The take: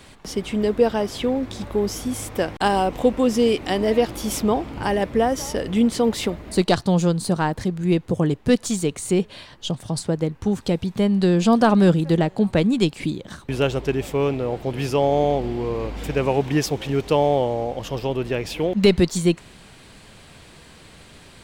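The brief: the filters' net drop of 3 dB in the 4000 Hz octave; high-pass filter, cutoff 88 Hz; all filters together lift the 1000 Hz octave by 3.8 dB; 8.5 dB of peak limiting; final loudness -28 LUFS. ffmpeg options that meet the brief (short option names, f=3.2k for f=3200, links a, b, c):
-af "highpass=88,equalizer=f=1k:t=o:g=5.5,equalizer=f=4k:t=o:g=-4.5,volume=-5.5dB,alimiter=limit=-15.5dB:level=0:latency=1"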